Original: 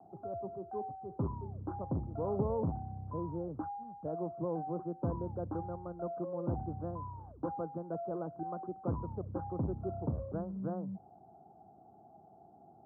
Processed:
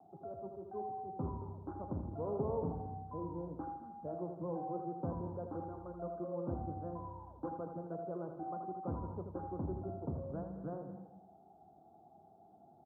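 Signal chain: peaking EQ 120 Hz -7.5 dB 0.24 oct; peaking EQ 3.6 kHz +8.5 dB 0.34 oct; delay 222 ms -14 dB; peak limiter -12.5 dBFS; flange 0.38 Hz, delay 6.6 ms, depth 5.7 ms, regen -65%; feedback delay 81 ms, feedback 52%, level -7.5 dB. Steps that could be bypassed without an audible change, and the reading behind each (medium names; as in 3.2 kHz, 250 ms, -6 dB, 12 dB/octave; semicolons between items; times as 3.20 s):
peaking EQ 3.6 kHz: input has nothing above 1.3 kHz; peak limiter -12.5 dBFS: peak at its input -21.0 dBFS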